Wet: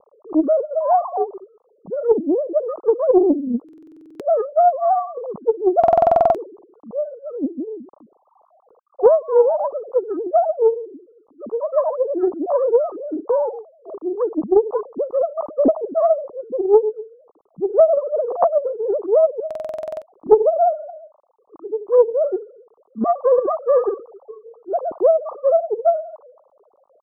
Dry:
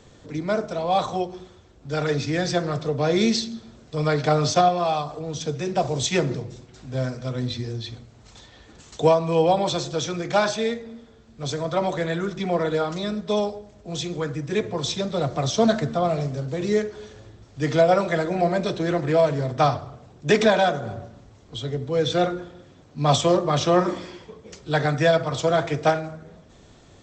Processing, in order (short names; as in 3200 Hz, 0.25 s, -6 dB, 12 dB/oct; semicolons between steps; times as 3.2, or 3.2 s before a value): sine-wave speech; in parallel at -0.5 dB: vocal rider within 3 dB 0.5 s; on the sum: steep low-pass 1200 Hz 96 dB/oct; dynamic EQ 300 Hz, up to +5 dB, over -28 dBFS, Q 1.5; treble ducked by the level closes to 540 Hz, closed at -7.5 dBFS; stuck buffer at 3.64/5.79/19.46, samples 2048, times 11; Doppler distortion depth 0.38 ms; gain -1 dB